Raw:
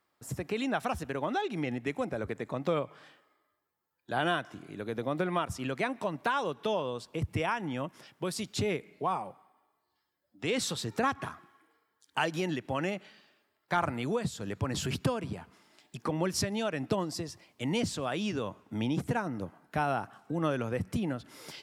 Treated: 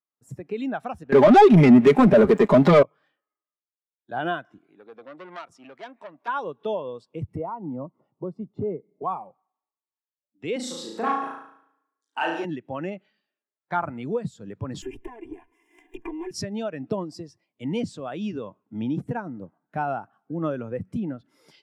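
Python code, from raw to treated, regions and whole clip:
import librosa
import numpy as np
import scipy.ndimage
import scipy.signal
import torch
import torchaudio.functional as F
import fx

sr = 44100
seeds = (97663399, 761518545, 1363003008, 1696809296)

y = fx.chain(x, sr, fx.comb(ms=4.9, depth=0.71),
    fx.leveller(passes=5),
    fx.band_squash(depth_pct=40), at=(1.12, 2.83))
y = fx.chain(y, sr, fx.highpass(hz=460.0, slope=6),
    fx.high_shelf(hz=11000.0, db=-8.5),
    fx.transformer_sat(knee_hz=3100.0), at=(4.58, 6.28))
y = fx.chain(y, sr, fx.savgol(points=65),
    fx.clip_hard(threshold_db=-24.0),
    fx.band_squash(depth_pct=40), at=(7.36, 9.03))
y = fx.chain(y, sr, fx.highpass(hz=210.0, slope=24),
    fx.room_flutter(wall_m=6.2, rt60_s=0.98),
    fx.transformer_sat(knee_hz=1200.0), at=(10.56, 12.45))
y = fx.chain(y, sr, fx.lower_of_two(delay_ms=2.9),
    fx.fixed_phaser(hz=880.0, stages=8),
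    fx.band_squash(depth_pct=100), at=(14.82, 16.31))
y = fx.peak_eq(y, sr, hz=64.0, db=-8.0, octaves=1.0)
y = fx.spectral_expand(y, sr, expansion=1.5)
y = y * librosa.db_to_amplitude(3.5)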